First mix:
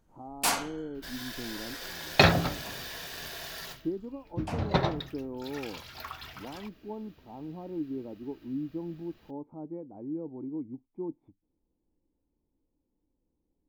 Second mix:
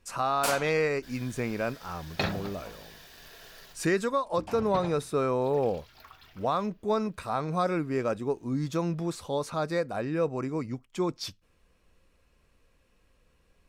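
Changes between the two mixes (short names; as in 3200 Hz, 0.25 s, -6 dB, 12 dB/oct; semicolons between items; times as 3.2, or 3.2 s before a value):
speech: remove vocal tract filter u; first sound -4.0 dB; second sound -10.5 dB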